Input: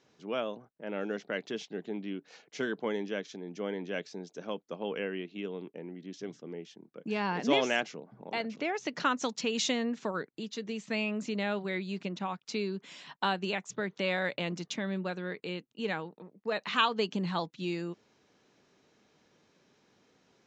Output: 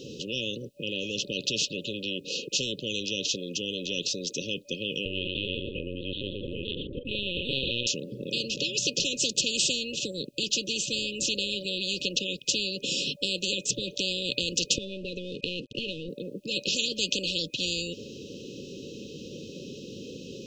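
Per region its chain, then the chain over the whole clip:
0:05.05–0:07.87: single-tap delay 119 ms −8 dB + linear-prediction vocoder at 8 kHz pitch kept
0:14.78–0:16.09: mu-law and A-law mismatch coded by mu + high-frequency loss of the air 140 metres + downward compressor 5 to 1, threshold −44 dBFS
whole clip: brick-wall band-stop 580–2,500 Hz; high-shelf EQ 4,200 Hz −6.5 dB; every bin compressed towards the loudest bin 10 to 1; level +7.5 dB

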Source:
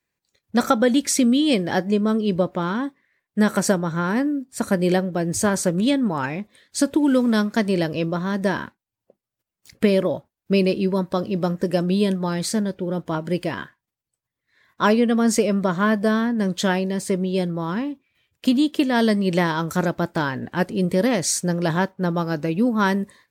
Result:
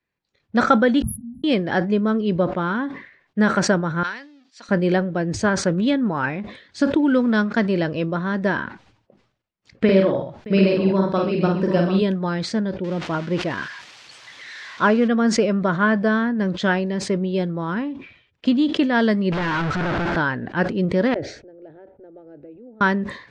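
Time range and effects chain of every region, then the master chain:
0:01.02–0:01.44: linear-phase brick-wall band-stop 230–10,000 Hz + parametric band 340 Hz −11.5 dB 2.1 octaves + hum removal 88.04 Hz, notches 15
0:04.03–0:04.69: mu-law and A-law mismatch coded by mu + resonant band-pass 4,600 Hz, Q 1.3
0:09.84–0:12.02: double-tracking delay 47 ms −3 dB + multi-tap delay 77/619/742 ms −11/−17.5/−9 dB
0:12.84–0:15.08: spike at every zero crossing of −17 dBFS + low-pass filter 3,100 Hz 6 dB per octave
0:19.32–0:20.16: sign of each sample alone + low-pass filter 2,700 Hz 6 dB per octave + leveller curve on the samples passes 1
0:21.14–0:22.81: low-pass filter 1,100 Hz + downward compressor, threshold −36 dBFS + phaser with its sweep stopped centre 440 Hz, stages 4
whole clip: Bessel low-pass filter 3,500 Hz, order 4; dynamic equaliser 1,500 Hz, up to +6 dB, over −41 dBFS, Q 3.1; level that may fall only so fast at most 100 dB per second

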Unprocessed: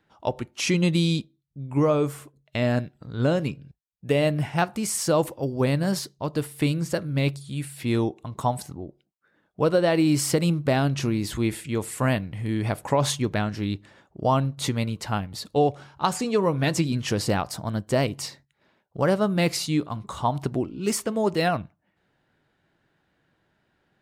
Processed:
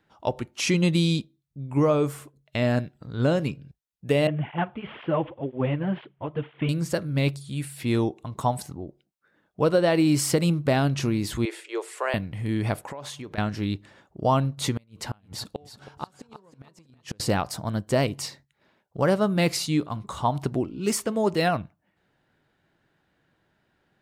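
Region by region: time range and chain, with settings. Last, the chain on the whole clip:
0:04.27–0:06.69: variable-slope delta modulation 64 kbit/s + Chebyshev low-pass filter 3,300 Hz, order 6 + through-zero flanger with one copy inverted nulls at 2 Hz, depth 5.7 ms
0:11.45–0:12.14: Chebyshev high-pass filter 350 Hz, order 6 + high-frequency loss of the air 57 metres
0:12.81–0:13.38: bass and treble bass −9 dB, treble −4 dB + downward compressor 10 to 1, threshold −33 dBFS
0:14.74–0:17.20: gate with flip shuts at −17 dBFS, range −34 dB + repeating echo 321 ms, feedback 24%, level −12.5 dB
whole clip: no processing

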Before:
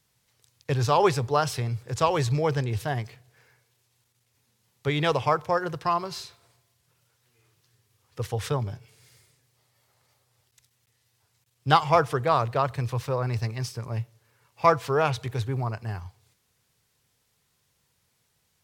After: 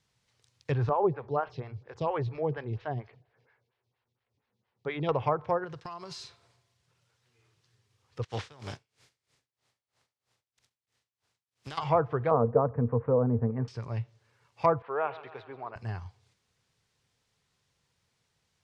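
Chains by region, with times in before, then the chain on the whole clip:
0:00.89–0:05.09: high-frequency loss of the air 210 metres + phaser with staggered stages 4.3 Hz
0:05.64–0:06.23: noise gate −42 dBFS, range −11 dB + high-shelf EQ 4,500 Hz +8 dB + downward compressor 10 to 1, threshold −34 dBFS
0:08.23–0:11.77: compressing power law on the bin magnitudes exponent 0.56 + tremolo with a sine in dB 3.1 Hz, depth 26 dB
0:12.31–0:13.68: low-pass filter 1,500 Hz 24 dB per octave + hollow resonant body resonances 240/460 Hz, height 17 dB, ringing for 85 ms
0:14.82–0:15.76: high-pass filter 500 Hz + high-frequency loss of the air 440 metres + repeating echo 134 ms, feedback 57%, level −16.5 dB
whole clip: treble cut that deepens with the level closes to 960 Hz, closed at −19 dBFS; low-pass filter 6,600 Hz 12 dB per octave; level −3 dB

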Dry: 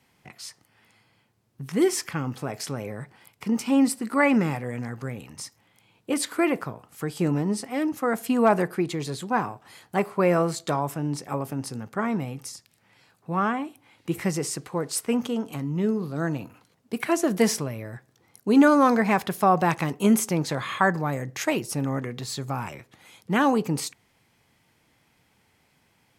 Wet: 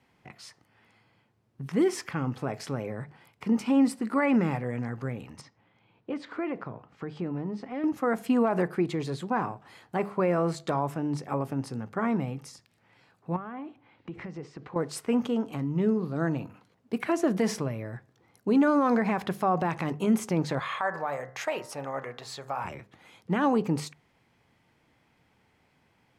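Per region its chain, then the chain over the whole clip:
0:05.41–0:07.84: high-pass filter 63 Hz + downward compressor 2 to 1, threshold −33 dBFS + high-frequency loss of the air 170 metres
0:13.36–0:14.76: downward compressor 12 to 1, threshold −33 dBFS + high-frequency loss of the air 180 metres
0:20.59–0:22.65: low shelf with overshoot 410 Hz −12 dB, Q 1.5 + hum removal 66.17 Hz, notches 31 + downward compressor 2 to 1, threshold −26 dBFS
whole clip: brickwall limiter −15.5 dBFS; low-pass filter 2,300 Hz 6 dB per octave; mains-hum notches 50/100/150/200 Hz

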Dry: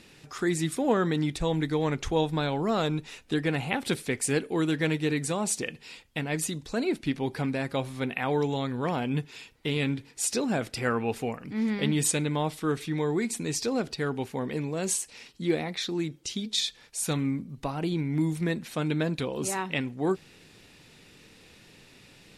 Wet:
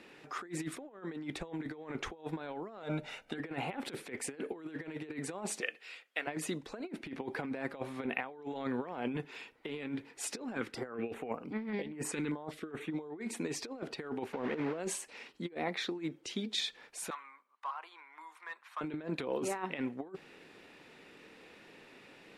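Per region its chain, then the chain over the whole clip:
0:02.83–0:03.38: comb filter 1.4 ms, depth 61% + hum removal 67.3 Hz, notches 9
0:05.60–0:06.27: high-pass filter 690 Hz + parametric band 920 Hz −12 dB 0.37 octaves
0:10.55–0:13.21: high-shelf EQ 7,800 Hz −5 dB + notch on a step sequencer 5.1 Hz 650–6,900 Hz
0:14.33–0:14.80: linear delta modulator 64 kbit/s, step −32.5 dBFS + low-pass filter 3,200 Hz
0:17.10–0:18.81: four-pole ladder high-pass 960 Hz, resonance 65% + hard clipping −35 dBFS
whole clip: three-way crossover with the lows and the highs turned down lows −18 dB, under 240 Hz, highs −14 dB, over 2,600 Hz; compressor whose output falls as the input rises −35 dBFS, ratio −0.5; level −2.5 dB

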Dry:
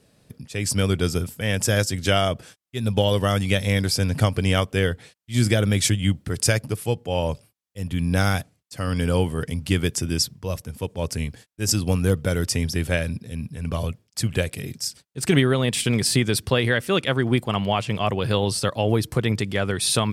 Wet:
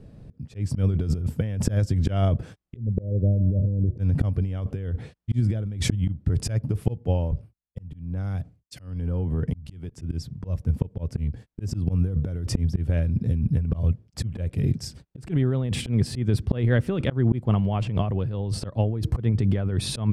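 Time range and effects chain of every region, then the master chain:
0:02.76–0:03.98: Butterworth low-pass 570 Hz 48 dB per octave + tuned comb filter 120 Hz, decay 0.65 s, harmonics odd
0:07.31–0:09.90: downward compressor 10 to 1, threshold −33 dBFS + multiband upward and downward expander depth 100%
whole clip: spectral tilt −4.5 dB per octave; volume swells 450 ms; compressor whose output falls as the input rises −20 dBFS, ratio −1; level −2.5 dB

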